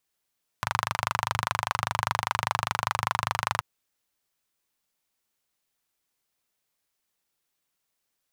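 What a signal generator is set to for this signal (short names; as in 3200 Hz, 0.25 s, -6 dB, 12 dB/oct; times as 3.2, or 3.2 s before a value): single-cylinder engine model, steady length 2.98 s, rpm 3000, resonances 110/1000 Hz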